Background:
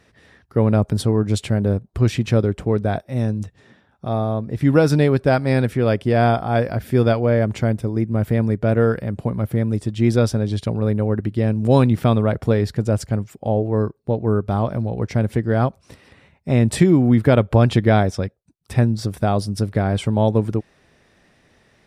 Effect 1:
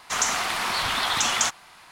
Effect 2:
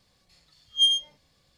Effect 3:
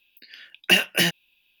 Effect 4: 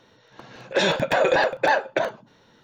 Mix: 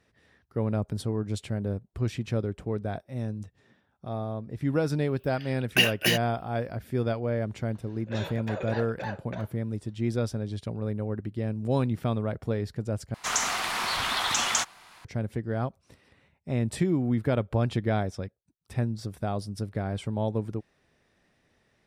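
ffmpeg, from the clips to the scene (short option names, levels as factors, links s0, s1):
-filter_complex "[0:a]volume=0.266,asplit=2[s0][s1];[s0]atrim=end=13.144[s2];[1:a]atrim=end=1.91,asetpts=PTS-STARTPTS,volume=0.708[s3];[s1]atrim=start=15.046[s4];[3:a]atrim=end=1.6,asetpts=PTS-STARTPTS,volume=0.631,afade=t=in:d=0.004:c=hsin,afade=t=out:st=1.596:d=0.004:c=hsin,adelay=5070[s5];[4:a]atrim=end=2.63,asetpts=PTS-STARTPTS,volume=0.141,afade=t=in:d=0.004:c=hsin,afade=t=out:st=2.626:d=0.004:c=hsin,adelay=7360[s6];[s2][s3]acrossfade=d=0.004:c1=hsin:c2=hsin[s7];[s7][s4]acrossfade=d=0.004:c1=hsin:c2=hsin[s8];[s8][s5][s6]amix=inputs=3:normalize=0"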